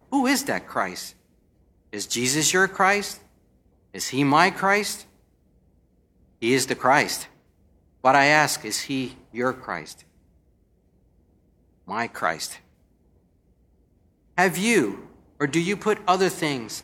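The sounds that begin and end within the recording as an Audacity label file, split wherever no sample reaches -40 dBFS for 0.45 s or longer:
1.930000	3.170000	sound
3.950000	5.030000	sound
6.420000	7.260000	sound
8.040000	10.010000	sound
11.870000	12.570000	sound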